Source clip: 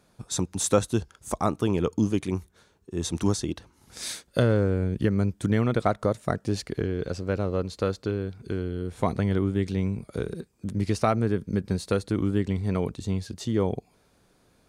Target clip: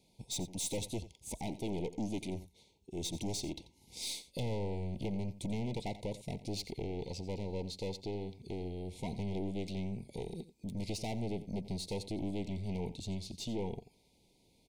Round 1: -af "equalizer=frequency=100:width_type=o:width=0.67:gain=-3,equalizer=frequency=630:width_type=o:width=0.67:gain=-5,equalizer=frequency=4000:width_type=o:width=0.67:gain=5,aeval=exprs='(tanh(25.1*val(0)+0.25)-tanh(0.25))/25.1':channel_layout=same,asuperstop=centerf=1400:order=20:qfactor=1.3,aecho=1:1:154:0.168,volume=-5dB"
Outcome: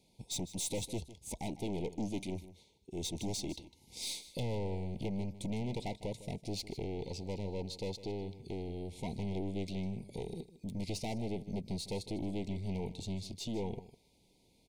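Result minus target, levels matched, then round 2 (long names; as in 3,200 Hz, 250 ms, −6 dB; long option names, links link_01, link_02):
echo 66 ms late
-af "equalizer=frequency=100:width_type=o:width=0.67:gain=-3,equalizer=frequency=630:width_type=o:width=0.67:gain=-5,equalizer=frequency=4000:width_type=o:width=0.67:gain=5,aeval=exprs='(tanh(25.1*val(0)+0.25)-tanh(0.25))/25.1':channel_layout=same,asuperstop=centerf=1400:order=20:qfactor=1.3,aecho=1:1:88:0.168,volume=-5dB"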